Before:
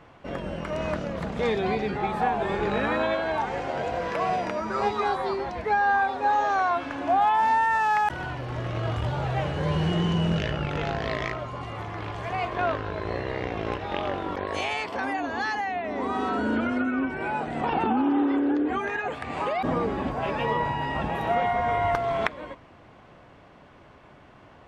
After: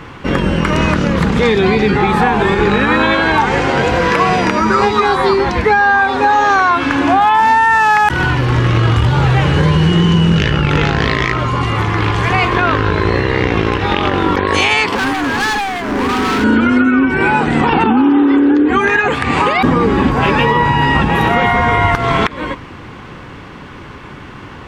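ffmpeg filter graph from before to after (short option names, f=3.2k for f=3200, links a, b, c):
-filter_complex "[0:a]asettb=1/sr,asplit=3[a][b][c];[a]atrim=end=14.954[d];[b]atrim=start=14.95:end=16.44,asetpts=PTS-STARTPTS,afade=t=in:d=0.004:c=qsin,afade=t=out:st=1.486:d=0.004:c=qsin,asuperstop=centerf=2700:order=12:qfactor=1.1,volume=32.5dB,asoftclip=hard,volume=-32.5dB[e];[c]atrim=start=16.436[f];[d][e]acrossfade=d=0.004:c1=hsin:c2=qsin[g];[g][f]acrossfade=d=0.004:c1=qsin:c2=hsin,equalizer=f=650:t=o:w=0.48:g=-14.5,acompressor=threshold=-29dB:ratio=6,alimiter=level_in=22dB:limit=-1dB:release=50:level=0:latency=1,volume=-1dB"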